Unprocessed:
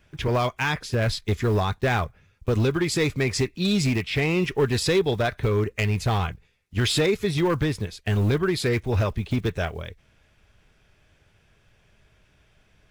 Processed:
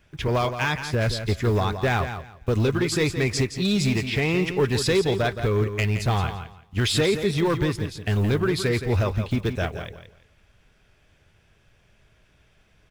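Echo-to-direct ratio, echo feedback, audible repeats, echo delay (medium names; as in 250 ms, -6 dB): -9.5 dB, 21%, 2, 170 ms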